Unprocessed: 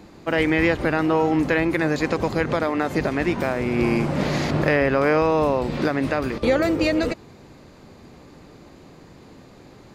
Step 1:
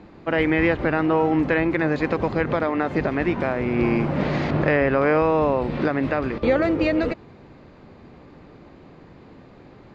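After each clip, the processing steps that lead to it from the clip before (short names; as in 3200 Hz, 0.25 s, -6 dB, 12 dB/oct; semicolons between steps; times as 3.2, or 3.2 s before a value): LPF 2900 Hz 12 dB/oct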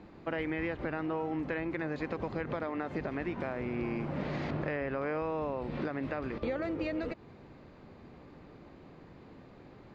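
compressor 3:1, threshold -27 dBFS, peak gain reduction 9.5 dB; gain -6.5 dB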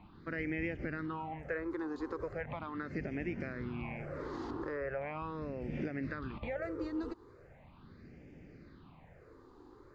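phaser stages 6, 0.39 Hz, lowest notch 160–1100 Hz; gain -1 dB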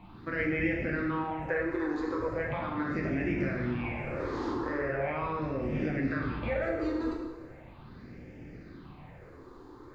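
plate-style reverb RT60 1.1 s, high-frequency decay 0.9×, DRR -2.5 dB; gain +3.5 dB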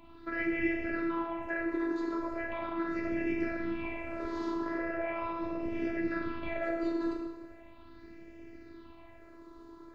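robotiser 333 Hz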